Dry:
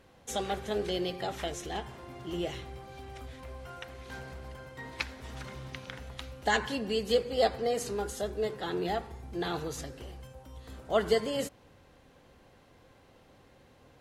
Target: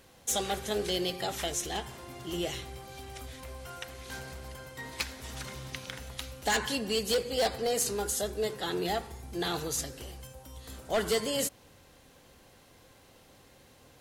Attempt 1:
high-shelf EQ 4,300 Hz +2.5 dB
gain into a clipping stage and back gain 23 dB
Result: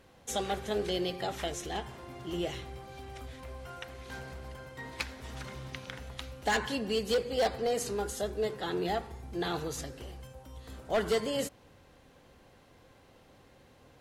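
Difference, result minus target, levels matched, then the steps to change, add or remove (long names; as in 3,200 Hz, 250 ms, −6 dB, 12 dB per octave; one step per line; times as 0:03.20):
8,000 Hz band −6.5 dB
change: high-shelf EQ 4,300 Hz +14.5 dB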